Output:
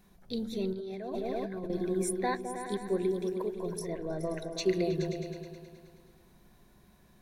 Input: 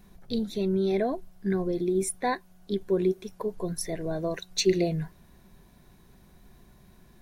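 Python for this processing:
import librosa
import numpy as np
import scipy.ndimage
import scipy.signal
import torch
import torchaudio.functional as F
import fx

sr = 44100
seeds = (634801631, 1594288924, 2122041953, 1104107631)

y = fx.high_shelf(x, sr, hz=3100.0, db=-9.5, at=(3.79, 4.66))
y = fx.echo_opening(y, sr, ms=106, hz=200, octaves=2, feedback_pct=70, wet_db=-3)
y = fx.over_compress(y, sr, threshold_db=-31.0, ratio=-1.0, at=(0.73, 1.7))
y = fx.low_shelf(y, sr, hz=160.0, db=-7.0)
y = y * 10.0 ** (-4.0 / 20.0)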